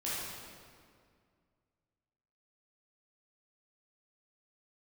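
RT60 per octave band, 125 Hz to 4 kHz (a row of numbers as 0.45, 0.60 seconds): 2.6, 2.5, 2.2, 2.0, 1.8, 1.5 seconds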